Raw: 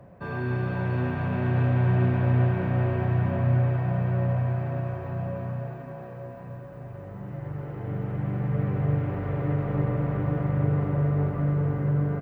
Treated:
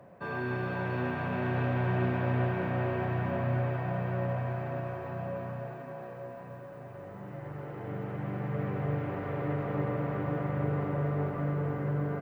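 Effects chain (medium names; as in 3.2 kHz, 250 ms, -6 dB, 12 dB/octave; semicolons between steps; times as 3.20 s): high-pass 310 Hz 6 dB/octave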